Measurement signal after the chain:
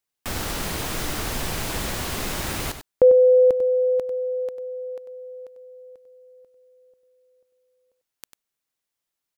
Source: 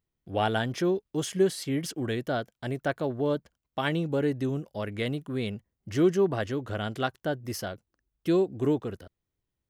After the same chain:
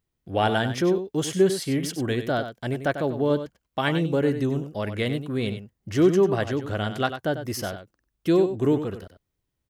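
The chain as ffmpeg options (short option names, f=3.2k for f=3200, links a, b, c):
-af "aecho=1:1:96:0.316,volume=4dB"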